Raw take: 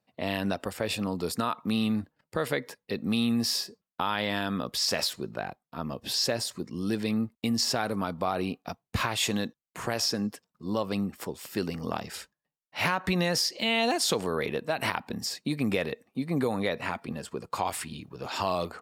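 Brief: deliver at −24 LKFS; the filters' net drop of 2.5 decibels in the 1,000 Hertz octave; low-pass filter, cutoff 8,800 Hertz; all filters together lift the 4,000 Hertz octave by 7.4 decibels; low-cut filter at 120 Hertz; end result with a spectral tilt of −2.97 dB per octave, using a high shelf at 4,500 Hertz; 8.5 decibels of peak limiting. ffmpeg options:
ffmpeg -i in.wav -af "highpass=120,lowpass=8800,equalizer=frequency=1000:width_type=o:gain=-4,equalizer=frequency=4000:width_type=o:gain=6,highshelf=frequency=4500:gain=6.5,volume=5dB,alimiter=limit=-11dB:level=0:latency=1" out.wav

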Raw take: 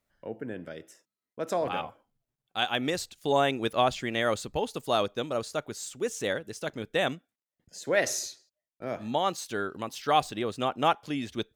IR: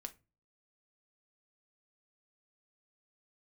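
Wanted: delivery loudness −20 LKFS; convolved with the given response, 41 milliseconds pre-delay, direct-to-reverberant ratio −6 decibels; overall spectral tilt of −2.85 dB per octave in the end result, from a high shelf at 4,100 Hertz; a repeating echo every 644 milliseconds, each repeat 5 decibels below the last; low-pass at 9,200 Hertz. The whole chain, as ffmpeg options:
-filter_complex "[0:a]lowpass=9200,highshelf=frequency=4100:gain=6,aecho=1:1:644|1288|1932|2576|3220|3864|4508:0.562|0.315|0.176|0.0988|0.0553|0.031|0.0173,asplit=2[link_01][link_02];[1:a]atrim=start_sample=2205,adelay=41[link_03];[link_02][link_03]afir=irnorm=-1:irlink=0,volume=10dB[link_04];[link_01][link_04]amix=inputs=2:normalize=0,volume=1.5dB"

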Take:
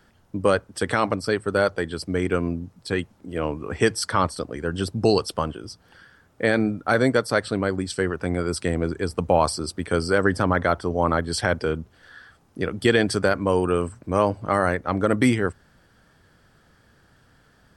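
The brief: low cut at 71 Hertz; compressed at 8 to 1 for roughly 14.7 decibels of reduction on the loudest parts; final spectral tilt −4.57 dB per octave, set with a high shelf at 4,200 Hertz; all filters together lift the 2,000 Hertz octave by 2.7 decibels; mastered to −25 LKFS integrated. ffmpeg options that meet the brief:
ffmpeg -i in.wav -af "highpass=71,equalizer=frequency=2000:width_type=o:gain=5,highshelf=frequency=4200:gain=-7.5,acompressor=threshold=-29dB:ratio=8,volume=10dB" out.wav

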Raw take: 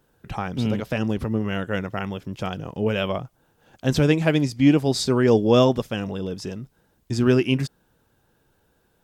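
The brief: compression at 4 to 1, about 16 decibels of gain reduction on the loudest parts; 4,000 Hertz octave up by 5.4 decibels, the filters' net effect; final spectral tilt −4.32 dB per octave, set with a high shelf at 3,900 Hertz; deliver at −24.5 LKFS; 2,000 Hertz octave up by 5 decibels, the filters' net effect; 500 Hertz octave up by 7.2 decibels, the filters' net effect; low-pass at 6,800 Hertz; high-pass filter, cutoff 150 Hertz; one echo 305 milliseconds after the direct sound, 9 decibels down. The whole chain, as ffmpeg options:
ffmpeg -i in.wav -af "highpass=150,lowpass=6800,equalizer=frequency=500:width_type=o:gain=8.5,equalizer=frequency=2000:width_type=o:gain=5,highshelf=frequency=3900:gain=-4,equalizer=frequency=4000:width_type=o:gain=8,acompressor=threshold=-26dB:ratio=4,aecho=1:1:305:0.355,volume=4.5dB" out.wav

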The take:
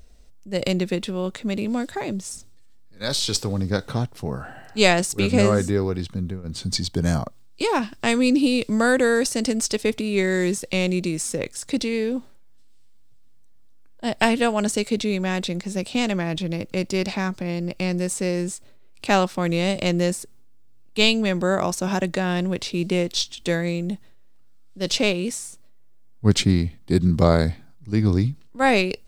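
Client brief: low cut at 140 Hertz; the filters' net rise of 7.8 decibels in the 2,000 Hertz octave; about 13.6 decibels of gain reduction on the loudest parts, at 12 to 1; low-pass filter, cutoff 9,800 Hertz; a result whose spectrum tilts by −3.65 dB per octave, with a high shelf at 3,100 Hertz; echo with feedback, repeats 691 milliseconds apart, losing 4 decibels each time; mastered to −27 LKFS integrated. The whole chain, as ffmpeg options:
ffmpeg -i in.wav -af "highpass=140,lowpass=9800,equalizer=frequency=2000:width_type=o:gain=8.5,highshelf=frequency=3100:gain=3.5,acompressor=threshold=-21dB:ratio=12,aecho=1:1:691|1382|2073|2764|3455|4146|4837|5528|6219:0.631|0.398|0.25|0.158|0.0994|0.0626|0.0394|0.0249|0.0157,volume=-2dB" out.wav

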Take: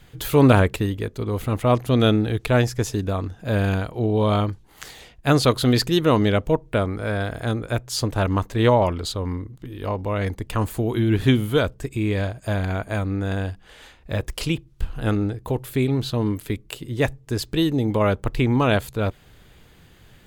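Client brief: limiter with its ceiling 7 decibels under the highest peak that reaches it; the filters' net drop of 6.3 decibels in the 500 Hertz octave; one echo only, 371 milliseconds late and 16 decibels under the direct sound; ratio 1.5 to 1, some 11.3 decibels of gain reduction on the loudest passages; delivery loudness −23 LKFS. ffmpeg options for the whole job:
ffmpeg -i in.wav -af "equalizer=frequency=500:width_type=o:gain=-8,acompressor=threshold=-44dB:ratio=1.5,alimiter=limit=-21.5dB:level=0:latency=1,aecho=1:1:371:0.158,volume=11.5dB" out.wav

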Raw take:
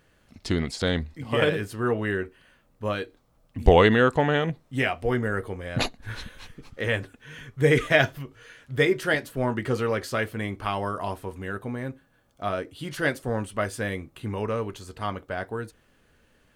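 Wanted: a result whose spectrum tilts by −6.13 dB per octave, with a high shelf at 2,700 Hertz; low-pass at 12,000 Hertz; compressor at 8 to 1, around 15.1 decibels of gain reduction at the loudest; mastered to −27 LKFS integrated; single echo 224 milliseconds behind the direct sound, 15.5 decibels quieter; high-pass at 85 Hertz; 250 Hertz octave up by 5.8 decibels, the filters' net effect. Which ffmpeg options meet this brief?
ffmpeg -i in.wav -af "highpass=85,lowpass=12000,equalizer=frequency=250:width_type=o:gain=7.5,highshelf=frequency=2700:gain=-8.5,acompressor=threshold=-26dB:ratio=8,aecho=1:1:224:0.168,volume=6dB" out.wav

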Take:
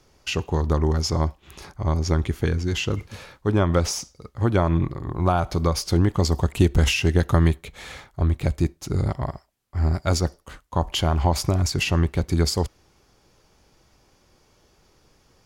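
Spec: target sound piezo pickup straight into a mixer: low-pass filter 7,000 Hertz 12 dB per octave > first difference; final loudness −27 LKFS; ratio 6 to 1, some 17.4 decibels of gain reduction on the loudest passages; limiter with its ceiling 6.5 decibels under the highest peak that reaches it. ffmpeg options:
ffmpeg -i in.wav -af "acompressor=threshold=-32dB:ratio=6,alimiter=level_in=2dB:limit=-24dB:level=0:latency=1,volume=-2dB,lowpass=7000,aderivative,volume=21.5dB" out.wav

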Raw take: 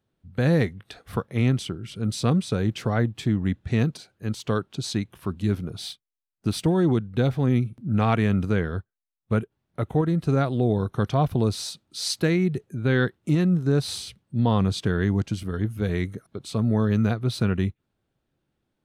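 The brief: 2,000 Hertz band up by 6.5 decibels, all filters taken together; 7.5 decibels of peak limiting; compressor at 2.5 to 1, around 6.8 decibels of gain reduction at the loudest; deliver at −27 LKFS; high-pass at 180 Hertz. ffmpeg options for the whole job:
ffmpeg -i in.wav -af "highpass=180,equalizer=frequency=2000:width_type=o:gain=8.5,acompressor=threshold=-27dB:ratio=2.5,volume=5.5dB,alimiter=limit=-14dB:level=0:latency=1" out.wav

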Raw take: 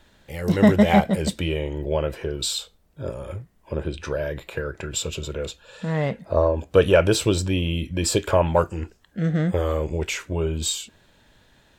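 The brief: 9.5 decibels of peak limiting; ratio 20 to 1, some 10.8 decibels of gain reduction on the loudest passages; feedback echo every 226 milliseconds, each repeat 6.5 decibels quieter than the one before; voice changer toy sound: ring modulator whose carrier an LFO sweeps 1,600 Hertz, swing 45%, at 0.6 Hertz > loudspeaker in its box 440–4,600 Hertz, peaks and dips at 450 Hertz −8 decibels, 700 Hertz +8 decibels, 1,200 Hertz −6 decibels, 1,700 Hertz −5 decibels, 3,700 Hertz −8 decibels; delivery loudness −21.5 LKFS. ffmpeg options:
ffmpeg -i in.wav -af "acompressor=threshold=-20dB:ratio=20,alimiter=limit=-19dB:level=0:latency=1,aecho=1:1:226|452|678|904|1130|1356:0.473|0.222|0.105|0.0491|0.0231|0.0109,aeval=exprs='val(0)*sin(2*PI*1600*n/s+1600*0.45/0.6*sin(2*PI*0.6*n/s))':channel_layout=same,highpass=440,equalizer=frequency=450:width_type=q:width=4:gain=-8,equalizer=frequency=700:width_type=q:width=4:gain=8,equalizer=frequency=1200:width_type=q:width=4:gain=-6,equalizer=frequency=1700:width_type=q:width=4:gain=-5,equalizer=frequency=3700:width_type=q:width=4:gain=-8,lowpass=frequency=4600:width=0.5412,lowpass=frequency=4600:width=1.3066,volume=11dB" out.wav

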